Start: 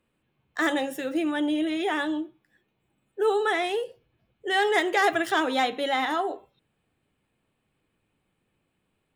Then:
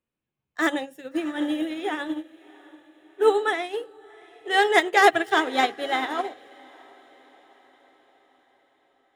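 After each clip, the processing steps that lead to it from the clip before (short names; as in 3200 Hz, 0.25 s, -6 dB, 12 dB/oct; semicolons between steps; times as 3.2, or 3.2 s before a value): diffused feedback echo 0.686 s, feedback 53%, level -11 dB; upward expander 2.5:1, over -33 dBFS; gain +7.5 dB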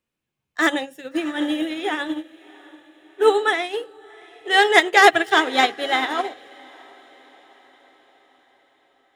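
bell 3800 Hz +4.5 dB 2.8 oct; gain +2.5 dB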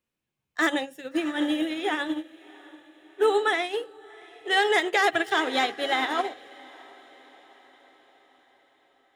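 limiter -10.5 dBFS, peak gain reduction 9 dB; gain -2.5 dB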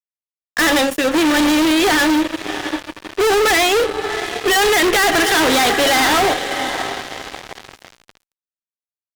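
fuzz box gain 44 dB, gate -50 dBFS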